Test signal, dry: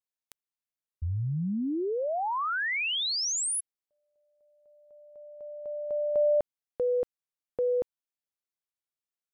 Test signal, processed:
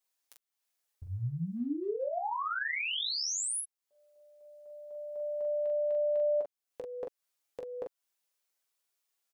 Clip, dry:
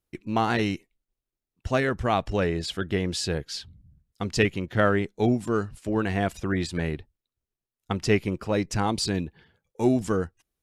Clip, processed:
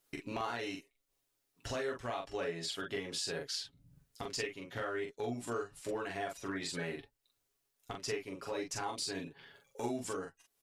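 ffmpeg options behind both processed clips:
ffmpeg -i in.wav -filter_complex "[0:a]bass=frequency=250:gain=-14,treble=frequency=4000:gain=3,aecho=1:1:7.2:0.66,acompressor=threshold=-40dB:ratio=5:attack=0.13:release=636:knee=1:detection=peak,asplit=2[link_01][link_02];[link_02]aecho=0:1:17|42:0.316|0.668[link_03];[link_01][link_03]amix=inputs=2:normalize=0,volume=6dB" out.wav

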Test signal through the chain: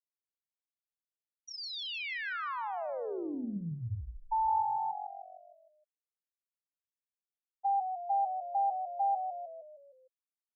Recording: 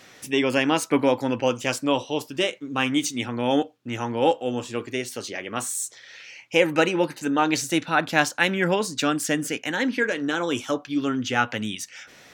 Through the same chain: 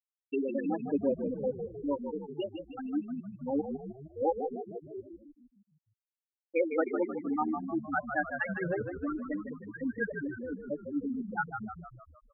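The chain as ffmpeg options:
ffmpeg -i in.wav -filter_complex "[0:a]afftfilt=real='re*gte(hypot(re,im),0.447)':imag='im*gte(hypot(re,im),0.447)':win_size=1024:overlap=0.75,asplit=7[link_01][link_02][link_03][link_04][link_05][link_06][link_07];[link_02]adelay=154,afreqshift=-46,volume=-7dB[link_08];[link_03]adelay=308,afreqshift=-92,volume=-12.5dB[link_09];[link_04]adelay=462,afreqshift=-138,volume=-18dB[link_10];[link_05]adelay=616,afreqshift=-184,volume=-23.5dB[link_11];[link_06]adelay=770,afreqshift=-230,volume=-29.1dB[link_12];[link_07]adelay=924,afreqshift=-276,volume=-34.6dB[link_13];[link_01][link_08][link_09][link_10][link_11][link_12][link_13]amix=inputs=7:normalize=0,volume=-8dB" out.wav

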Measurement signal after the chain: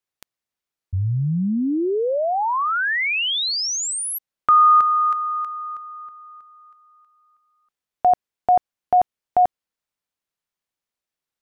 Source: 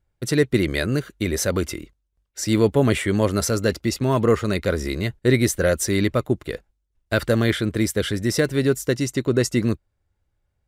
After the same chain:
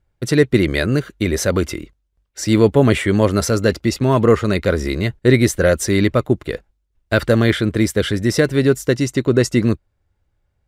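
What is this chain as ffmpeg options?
ffmpeg -i in.wav -af "highshelf=frequency=6400:gain=-7,volume=5dB" out.wav

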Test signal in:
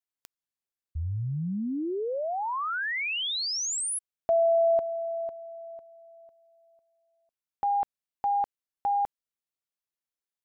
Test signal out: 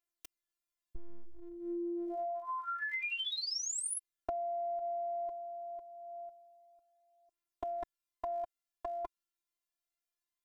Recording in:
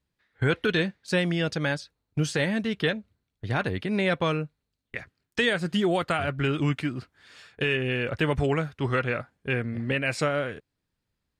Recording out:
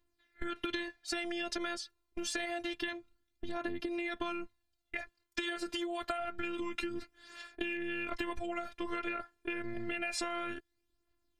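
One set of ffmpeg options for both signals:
ffmpeg -i in.wav -af "aphaser=in_gain=1:out_gain=1:delay=2.3:decay=0.47:speed=0.27:type=triangular,afftfilt=real='hypot(re,im)*cos(PI*b)':imag='0':win_size=512:overlap=0.75,acompressor=threshold=-38dB:ratio=20:attack=17:release=80:knee=1:detection=peak,volume=2dB" out.wav

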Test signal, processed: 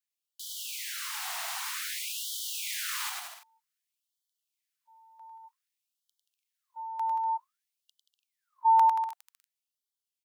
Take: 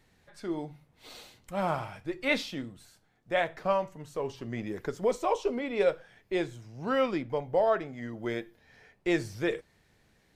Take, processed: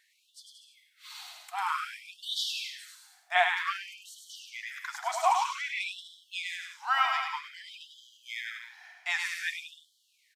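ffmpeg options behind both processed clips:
ffmpeg -i in.wav -af "dynaudnorm=framelen=430:gausssize=9:maxgain=3.5dB,aecho=1:1:100|180|244|295.2|336.2:0.631|0.398|0.251|0.158|0.1,afftfilt=real='re*gte(b*sr/1024,630*pow(3000/630,0.5+0.5*sin(2*PI*0.53*pts/sr)))':imag='im*gte(b*sr/1024,630*pow(3000/630,0.5+0.5*sin(2*PI*0.53*pts/sr)))':win_size=1024:overlap=0.75,volume=2.5dB" out.wav

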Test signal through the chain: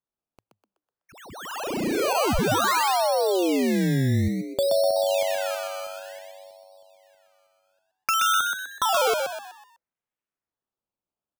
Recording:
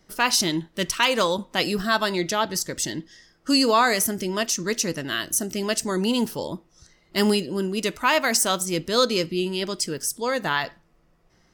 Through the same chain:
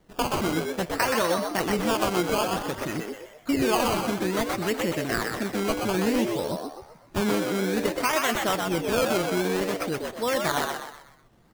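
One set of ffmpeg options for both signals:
ffmpeg -i in.wav -filter_complex "[0:a]lowpass=3700,equalizer=frequency=110:width=6.2:gain=4.5,acompressor=threshold=-21dB:ratio=6,acrusher=samples=17:mix=1:aa=0.000001:lfo=1:lforange=17:lforate=0.57,asplit=2[link_01][link_02];[link_02]asplit=5[link_03][link_04][link_05][link_06][link_07];[link_03]adelay=125,afreqshift=98,volume=-4dB[link_08];[link_04]adelay=250,afreqshift=196,volume=-11.7dB[link_09];[link_05]adelay=375,afreqshift=294,volume=-19.5dB[link_10];[link_06]adelay=500,afreqshift=392,volume=-27.2dB[link_11];[link_07]adelay=625,afreqshift=490,volume=-35dB[link_12];[link_08][link_09][link_10][link_11][link_12]amix=inputs=5:normalize=0[link_13];[link_01][link_13]amix=inputs=2:normalize=0" out.wav

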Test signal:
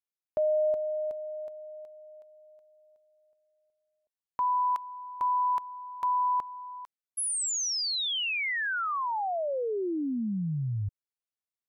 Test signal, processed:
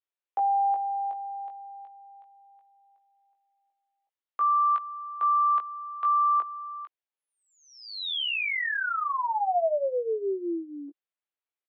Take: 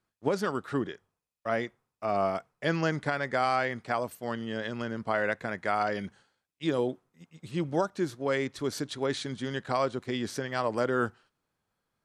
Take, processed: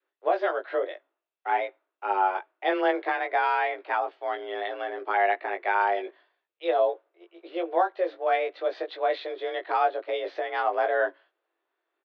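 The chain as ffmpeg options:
ffmpeg -i in.wav -filter_complex "[0:a]asplit=2[link_01][link_02];[link_02]adelay=19,volume=-4dB[link_03];[link_01][link_03]amix=inputs=2:normalize=0,adynamicequalizer=threshold=0.00708:dfrequency=500:dqfactor=2.3:tfrequency=500:tqfactor=2.3:attack=5:release=100:ratio=0.375:range=2.5:mode=boostabove:tftype=bell,highpass=frequency=150:width_type=q:width=0.5412,highpass=frequency=150:width_type=q:width=1.307,lowpass=frequency=3500:width_type=q:width=0.5176,lowpass=frequency=3500:width_type=q:width=0.7071,lowpass=frequency=3500:width_type=q:width=1.932,afreqshift=180" out.wav

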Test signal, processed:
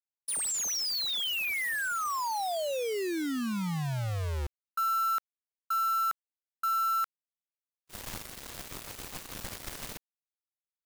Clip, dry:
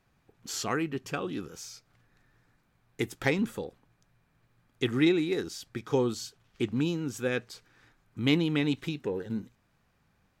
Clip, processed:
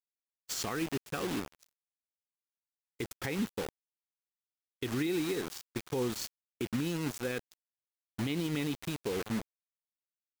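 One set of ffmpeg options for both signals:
ffmpeg -i in.wav -af "acrusher=bits=5:mix=0:aa=0.000001,agate=range=-33dB:threshold=-36dB:ratio=3:detection=peak,alimiter=level_in=1dB:limit=-24dB:level=0:latency=1:release=126,volume=-1dB" out.wav

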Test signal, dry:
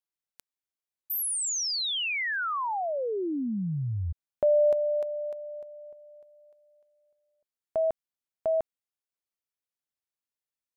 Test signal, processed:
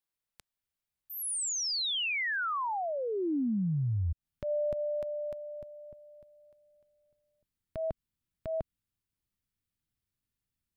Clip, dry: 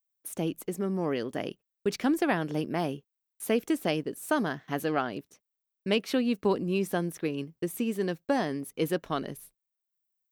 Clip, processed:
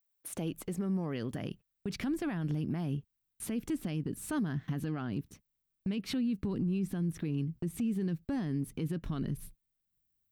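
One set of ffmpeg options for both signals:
ffmpeg -i in.wav -filter_complex "[0:a]asubboost=boost=12:cutoff=170,acrossover=split=9600[link_01][link_02];[link_02]acompressor=threshold=-54dB:ratio=4:attack=1:release=60[link_03];[link_01][link_03]amix=inputs=2:normalize=0,equalizer=frequency=6300:width=2.1:gain=-3.5,acompressor=threshold=-34dB:ratio=2.5:attack=0.58:release=195:knee=1:detection=peak,alimiter=level_in=5dB:limit=-24dB:level=0:latency=1:release=22,volume=-5dB,volume=2.5dB" out.wav

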